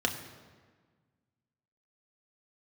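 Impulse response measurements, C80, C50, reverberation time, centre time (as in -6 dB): 10.5 dB, 9.5 dB, 1.5 s, 22 ms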